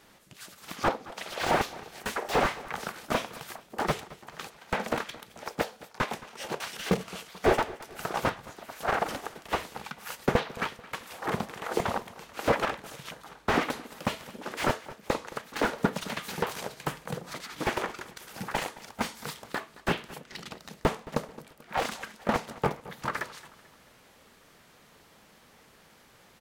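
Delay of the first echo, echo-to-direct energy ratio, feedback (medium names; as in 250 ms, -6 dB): 219 ms, -18.0 dB, 44%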